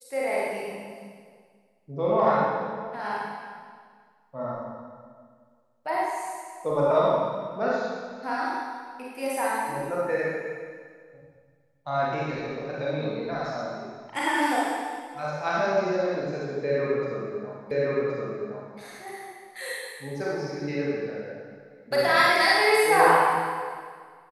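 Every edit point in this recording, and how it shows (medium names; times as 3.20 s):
17.71 s: repeat of the last 1.07 s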